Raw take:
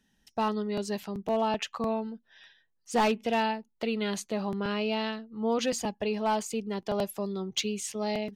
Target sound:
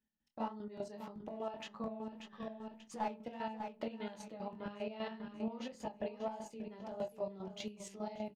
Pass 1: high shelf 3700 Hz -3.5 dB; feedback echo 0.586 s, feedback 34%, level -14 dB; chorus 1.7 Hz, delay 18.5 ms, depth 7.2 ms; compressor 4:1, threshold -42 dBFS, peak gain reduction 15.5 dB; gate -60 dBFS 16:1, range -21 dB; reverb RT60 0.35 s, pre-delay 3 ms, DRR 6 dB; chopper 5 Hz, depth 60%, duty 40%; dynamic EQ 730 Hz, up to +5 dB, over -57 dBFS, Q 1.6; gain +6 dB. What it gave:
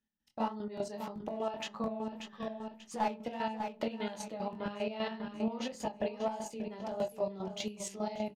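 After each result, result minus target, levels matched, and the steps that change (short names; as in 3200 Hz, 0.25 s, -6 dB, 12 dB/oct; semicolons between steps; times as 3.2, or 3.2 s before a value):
compressor: peak gain reduction -5.5 dB; 8000 Hz band +4.0 dB
change: compressor 4:1, threshold -49.5 dBFS, peak gain reduction 21 dB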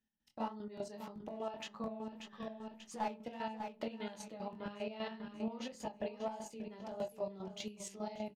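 8000 Hz band +4.0 dB
change: high shelf 3700 Hz -10 dB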